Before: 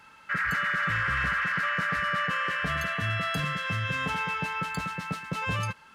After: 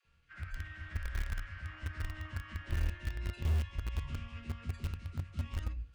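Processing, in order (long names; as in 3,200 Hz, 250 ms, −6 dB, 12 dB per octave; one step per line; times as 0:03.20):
high-shelf EQ 7,000 Hz −10.5 dB
convolution reverb RT60 0.30 s, pre-delay 3 ms, DRR 1 dB
reversed playback
upward compression, threshold −45 dBFS
reversed playback
phase-vocoder pitch shift with formants kept −11 semitones
guitar amp tone stack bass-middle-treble 10-0-1
all-pass dispersion lows, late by 53 ms, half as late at 410 Hz
in parallel at −11 dB: bit-depth reduction 6 bits, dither none
on the sum: level +4.5 dB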